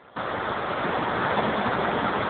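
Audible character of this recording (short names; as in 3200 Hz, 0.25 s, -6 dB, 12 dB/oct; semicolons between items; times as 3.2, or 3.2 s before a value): aliases and images of a low sample rate 2700 Hz, jitter 20%; AMR-NB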